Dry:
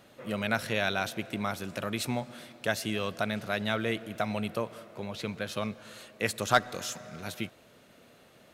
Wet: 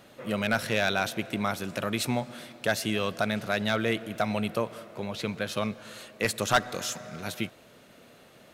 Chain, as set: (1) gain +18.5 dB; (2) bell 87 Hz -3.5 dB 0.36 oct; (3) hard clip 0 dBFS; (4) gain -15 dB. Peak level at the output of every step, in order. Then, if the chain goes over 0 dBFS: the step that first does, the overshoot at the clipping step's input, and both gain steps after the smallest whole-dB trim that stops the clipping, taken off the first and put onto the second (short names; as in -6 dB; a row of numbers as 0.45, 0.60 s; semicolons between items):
+8.0, +8.0, 0.0, -15.0 dBFS; step 1, 8.0 dB; step 1 +10.5 dB, step 4 -7 dB